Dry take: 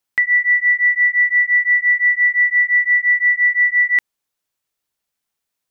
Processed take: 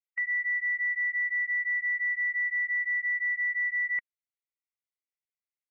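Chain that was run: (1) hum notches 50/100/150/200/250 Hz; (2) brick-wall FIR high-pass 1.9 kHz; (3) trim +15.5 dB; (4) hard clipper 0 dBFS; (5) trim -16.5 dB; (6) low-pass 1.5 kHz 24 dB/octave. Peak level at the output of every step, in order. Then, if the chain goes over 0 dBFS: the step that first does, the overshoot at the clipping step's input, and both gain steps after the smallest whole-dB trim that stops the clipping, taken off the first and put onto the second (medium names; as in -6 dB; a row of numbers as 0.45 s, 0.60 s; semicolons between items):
-9.0 dBFS, -8.5 dBFS, +7.0 dBFS, 0.0 dBFS, -16.5 dBFS, -24.5 dBFS; step 3, 7.0 dB; step 3 +8.5 dB, step 5 -9.5 dB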